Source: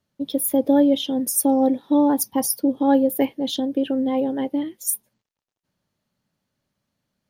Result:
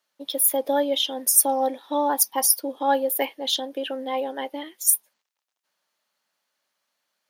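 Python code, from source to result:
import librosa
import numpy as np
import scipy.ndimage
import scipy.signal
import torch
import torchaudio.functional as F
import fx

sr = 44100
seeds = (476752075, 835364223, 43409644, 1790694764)

y = scipy.signal.sosfilt(scipy.signal.butter(2, 800.0, 'highpass', fs=sr, output='sos'), x)
y = y * librosa.db_to_amplitude(5.0)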